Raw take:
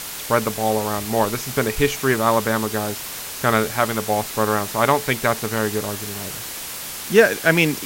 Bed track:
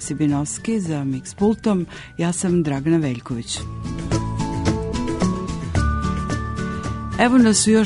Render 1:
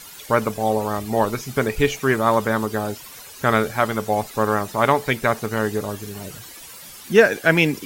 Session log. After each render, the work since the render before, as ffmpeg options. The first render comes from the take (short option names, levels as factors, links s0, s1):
-af "afftdn=nr=13:nf=-32"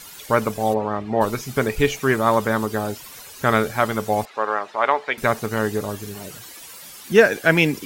-filter_complex "[0:a]asplit=3[s0][s1][s2];[s0]afade=t=out:st=0.73:d=0.02[s3];[s1]highpass=100,lowpass=2400,afade=t=in:st=0.73:d=0.02,afade=t=out:st=1.2:d=0.02[s4];[s2]afade=t=in:st=1.2:d=0.02[s5];[s3][s4][s5]amix=inputs=3:normalize=0,asettb=1/sr,asplit=3[s6][s7][s8];[s6]atrim=end=4.254[s9];[s7]atrim=start=4.25:end=5.18,asetpts=PTS-STARTPTS,afade=t=in:d=0.004:c=qsin,afade=t=out:st=0.926:d=0.004:c=qsin,highpass=550,lowpass=3000[s10];[s8]atrim=start=5.176[s11];[s9][s10]acrossfade=d=0.004:c1=hsin:c2=qsin[s12];[s12][s11]acrossfade=d=0.004:c1=qsin:c2=hsin,asettb=1/sr,asplit=3[s13][s14][s15];[s13]atrim=end=6.154[s16];[s14]atrim=start=6.15:end=7.12,asetpts=PTS-STARTPTS,afade=t=in:d=0.004:c=qsin,afade=t=out:st=0.966:d=0.004:c=qsin,lowshelf=f=120:g=-9[s17];[s15]atrim=start=7.116[s18];[s16][s17]acrossfade=d=0.004:c1=hsin:c2=qsin[s19];[s19][s18]acrossfade=d=0.004:c1=qsin:c2=hsin"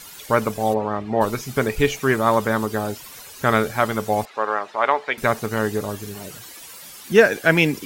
-af anull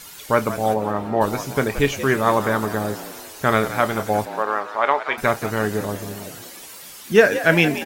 -filter_complex "[0:a]asplit=2[s0][s1];[s1]adelay=29,volume=0.237[s2];[s0][s2]amix=inputs=2:normalize=0,asplit=2[s3][s4];[s4]asplit=5[s5][s6][s7][s8][s9];[s5]adelay=176,afreqshift=73,volume=0.224[s10];[s6]adelay=352,afreqshift=146,volume=0.115[s11];[s7]adelay=528,afreqshift=219,volume=0.0582[s12];[s8]adelay=704,afreqshift=292,volume=0.0299[s13];[s9]adelay=880,afreqshift=365,volume=0.0151[s14];[s10][s11][s12][s13][s14]amix=inputs=5:normalize=0[s15];[s3][s15]amix=inputs=2:normalize=0"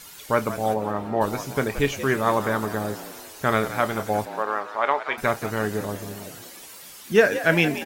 -af "volume=0.668"